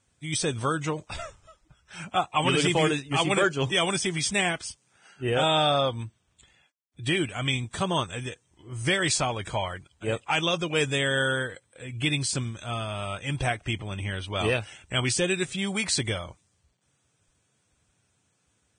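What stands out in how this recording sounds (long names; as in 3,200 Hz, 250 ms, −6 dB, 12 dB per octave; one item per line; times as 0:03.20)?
a quantiser's noise floor 12 bits, dither none
Ogg Vorbis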